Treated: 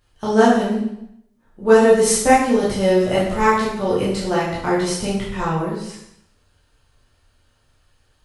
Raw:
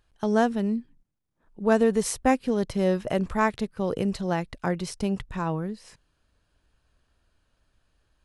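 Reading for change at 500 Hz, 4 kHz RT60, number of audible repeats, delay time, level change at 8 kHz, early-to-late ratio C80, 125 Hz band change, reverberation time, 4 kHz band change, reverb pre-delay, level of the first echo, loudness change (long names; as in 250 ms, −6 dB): +9.5 dB, 0.70 s, no echo audible, no echo audible, +12.0 dB, 5.0 dB, +5.0 dB, 0.75 s, +11.5 dB, 6 ms, no echo audible, +8.5 dB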